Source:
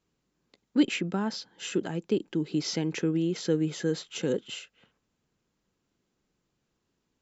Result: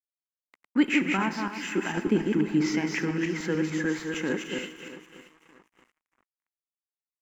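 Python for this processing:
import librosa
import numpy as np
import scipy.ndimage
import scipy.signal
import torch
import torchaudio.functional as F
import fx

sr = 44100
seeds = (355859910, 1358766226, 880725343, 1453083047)

y = fx.reverse_delay_fb(x, sr, ms=148, feedback_pct=43, wet_db=-3.5)
y = fx.low_shelf(y, sr, hz=240.0, db=10.0, at=(1.97, 2.68))
y = fx.echo_feedback(y, sr, ms=628, feedback_pct=33, wet_db=-16.5)
y = fx.rev_schroeder(y, sr, rt60_s=1.5, comb_ms=26, drr_db=12.5)
y = np.sign(y) * np.maximum(np.abs(y) - 10.0 ** (-56.0 / 20.0), 0.0)
y = fx.graphic_eq(y, sr, hz=(125, 250, 500, 1000, 2000, 4000), db=(-9, 4, -7, 7, 12, -11))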